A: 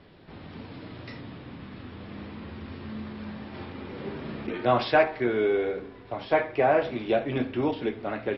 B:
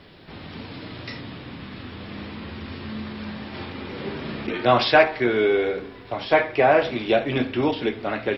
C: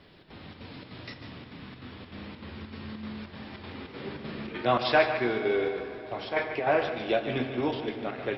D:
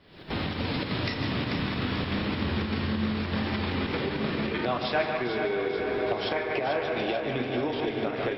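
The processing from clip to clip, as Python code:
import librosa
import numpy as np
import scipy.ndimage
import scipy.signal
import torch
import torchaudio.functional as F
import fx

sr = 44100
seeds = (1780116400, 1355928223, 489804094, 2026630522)

y1 = fx.high_shelf(x, sr, hz=2300.0, db=9.0)
y1 = F.gain(torch.from_numpy(y1), 4.0).numpy()
y2 = fx.chopper(y1, sr, hz=3.3, depth_pct=60, duty_pct=75)
y2 = y2 + 10.0 ** (-10.0 / 20.0) * np.pad(y2, (int(148 * sr / 1000.0), 0))[:len(y2)]
y2 = fx.rev_plate(y2, sr, seeds[0], rt60_s=4.2, hf_ratio=0.75, predelay_ms=0, drr_db=10.0)
y2 = F.gain(torch.from_numpy(y2), -7.0).numpy()
y3 = fx.recorder_agc(y2, sr, target_db=-16.5, rise_db_per_s=68.0, max_gain_db=30)
y3 = fx.echo_feedback(y3, sr, ms=440, feedback_pct=58, wet_db=-8.0)
y3 = F.gain(torch.from_numpy(y3), -5.0).numpy()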